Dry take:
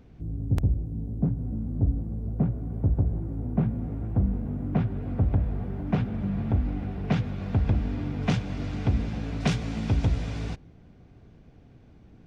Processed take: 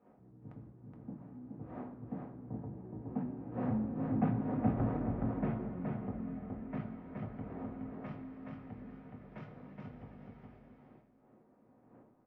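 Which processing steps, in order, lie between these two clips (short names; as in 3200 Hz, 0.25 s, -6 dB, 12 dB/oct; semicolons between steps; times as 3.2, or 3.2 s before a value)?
wind noise 440 Hz -39 dBFS; Doppler pass-by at 4.59, 41 m/s, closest 25 m; LPF 1200 Hz 12 dB/oct; bell 75 Hz -8.5 dB 2.3 oct; feedback echo 0.421 s, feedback 17%, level -3.5 dB; reverb RT60 1.0 s, pre-delay 3 ms, DRR 3.5 dB; gain +1 dB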